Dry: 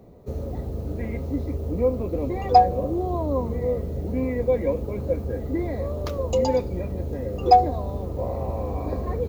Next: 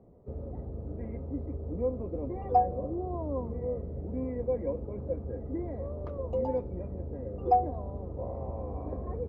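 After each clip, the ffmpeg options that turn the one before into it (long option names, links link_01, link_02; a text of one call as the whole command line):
ffmpeg -i in.wav -af "lowpass=1100,volume=-8.5dB" out.wav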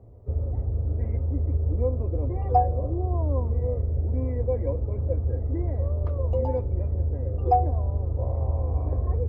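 ffmpeg -i in.wav -af "lowshelf=frequency=130:width_type=q:width=3:gain=7.5,volume=3dB" out.wav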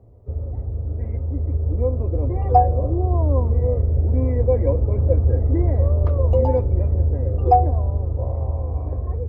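ffmpeg -i in.wav -af "dynaudnorm=framelen=410:gausssize=9:maxgain=10dB" out.wav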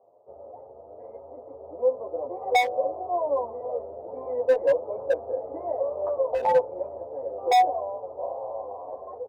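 ffmpeg -i in.wav -filter_complex "[0:a]asuperpass=centerf=740:order=4:qfactor=1.6,asoftclip=type=hard:threshold=-20.5dB,asplit=2[link_01][link_02];[link_02]adelay=9.9,afreqshift=2.3[link_03];[link_01][link_03]amix=inputs=2:normalize=1,volume=8dB" out.wav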